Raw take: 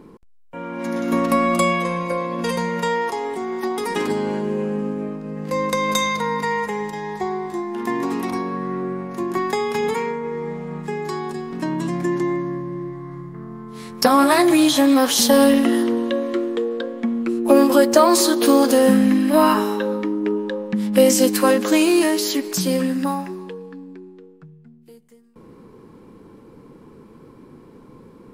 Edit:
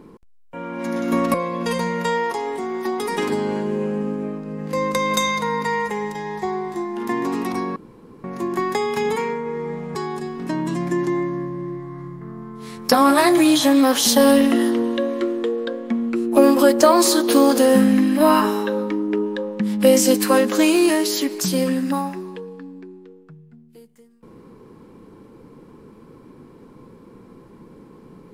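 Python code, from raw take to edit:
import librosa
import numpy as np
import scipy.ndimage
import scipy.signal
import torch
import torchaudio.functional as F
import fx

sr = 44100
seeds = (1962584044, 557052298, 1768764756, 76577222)

y = fx.edit(x, sr, fx.cut(start_s=1.34, length_s=0.78),
    fx.room_tone_fill(start_s=8.54, length_s=0.48),
    fx.cut(start_s=10.73, length_s=0.35), tone=tone)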